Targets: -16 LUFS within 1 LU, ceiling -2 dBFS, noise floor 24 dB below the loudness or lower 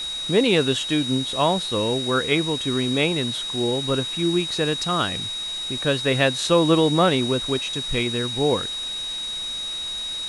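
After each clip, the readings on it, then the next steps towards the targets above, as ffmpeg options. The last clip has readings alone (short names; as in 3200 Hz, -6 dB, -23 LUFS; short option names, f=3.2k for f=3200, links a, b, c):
steady tone 3800 Hz; tone level -27 dBFS; noise floor -30 dBFS; noise floor target -46 dBFS; loudness -22.0 LUFS; peak -5.0 dBFS; loudness target -16.0 LUFS
-> -af "bandreject=f=3.8k:w=30"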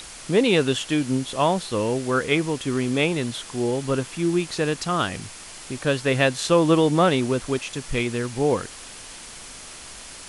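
steady tone none; noise floor -41 dBFS; noise floor target -47 dBFS
-> -af "afftdn=nr=6:nf=-41"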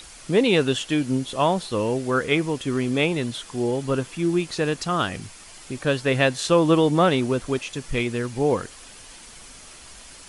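noise floor -45 dBFS; noise floor target -47 dBFS
-> -af "afftdn=nr=6:nf=-45"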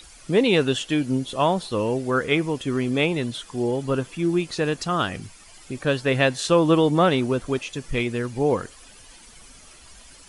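noise floor -48 dBFS; loudness -23.0 LUFS; peak -5.5 dBFS; loudness target -16.0 LUFS
-> -af "volume=7dB,alimiter=limit=-2dB:level=0:latency=1"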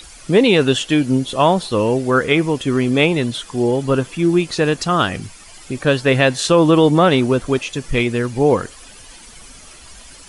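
loudness -16.5 LUFS; peak -2.0 dBFS; noise floor -41 dBFS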